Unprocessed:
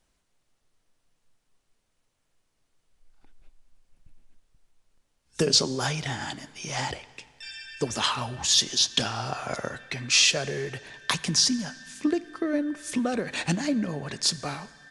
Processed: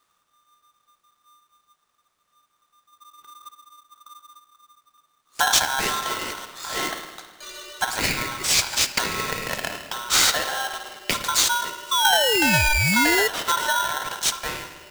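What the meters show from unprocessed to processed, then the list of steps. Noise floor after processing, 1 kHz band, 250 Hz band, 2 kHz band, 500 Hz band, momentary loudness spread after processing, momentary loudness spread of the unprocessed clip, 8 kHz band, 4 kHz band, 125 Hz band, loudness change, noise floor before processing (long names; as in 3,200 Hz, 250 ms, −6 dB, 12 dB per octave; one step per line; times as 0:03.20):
−71 dBFS, +10.5 dB, −2.5 dB, +10.0 dB, +2.5 dB, 15 LU, 15 LU, +4.5 dB, +3.0 dB, +0.5 dB, +4.5 dB, −75 dBFS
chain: parametric band 3,600 Hz −3 dB
spring reverb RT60 1.3 s, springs 53 ms, chirp 30 ms, DRR 7 dB
sound drawn into the spectrogram fall, 0:11.91–0:13.28, 750–2,300 Hz −23 dBFS
ring modulator with a square carrier 1,200 Hz
level +3 dB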